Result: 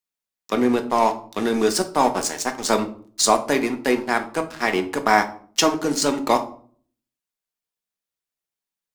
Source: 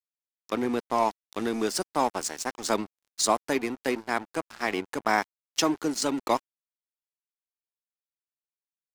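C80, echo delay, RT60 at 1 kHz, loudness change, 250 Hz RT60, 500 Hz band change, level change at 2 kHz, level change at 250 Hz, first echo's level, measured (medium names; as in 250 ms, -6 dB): 18.5 dB, no echo, 0.45 s, +7.0 dB, 0.70 s, +7.5 dB, +7.0 dB, +7.0 dB, no echo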